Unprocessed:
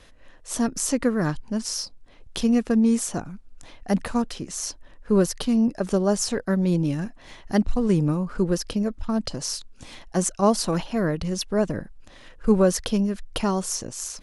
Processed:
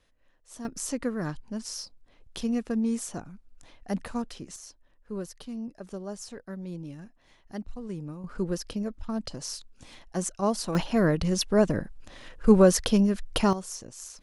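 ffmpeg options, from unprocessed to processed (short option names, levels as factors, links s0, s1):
-af "asetnsamples=n=441:p=0,asendcmd='0.65 volume volume -8dB;4.56 volume volume -16dB;8.24 volume volume -7dB;10.75 volume volume 1dB;13.53 volume volume -10dB',volume=0.141"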